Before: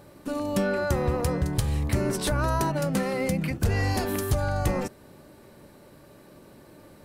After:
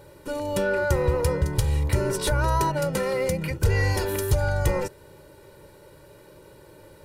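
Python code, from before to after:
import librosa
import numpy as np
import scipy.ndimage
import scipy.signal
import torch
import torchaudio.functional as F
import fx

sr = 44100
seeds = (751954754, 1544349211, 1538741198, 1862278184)

y = x + 0.75 * np.pad(x, (int(2.1 * sr / 1000.0), 0))[:len(x)]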